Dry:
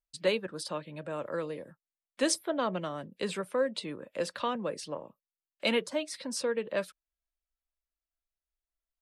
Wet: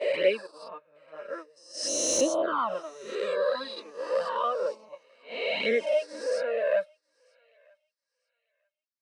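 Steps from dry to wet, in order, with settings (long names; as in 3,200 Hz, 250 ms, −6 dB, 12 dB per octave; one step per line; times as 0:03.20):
peak hold with a rise ahead of every peak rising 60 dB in 2.33 s
noise gate −31 dBFS, range −14 dB
0:01.56–0:02.21: high shelf with overshoot 3,500 Hz +12.5 dB, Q 1.5
flanger swept by the level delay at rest 9 ms, full sweep at −18 dBFS
mid-hump overdrive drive 22 dB, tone 3,000 Hz, clips at −1 dBFS
feedback echo with a high-pass in the loop 941 ms, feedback 40%, high-pass 830 Hz, level −19 dB
0:03.63–0:04.89: phone interference −38 dBFS
every bin expanded away from the loudest bin 1.5 to 1
level −6.5 dB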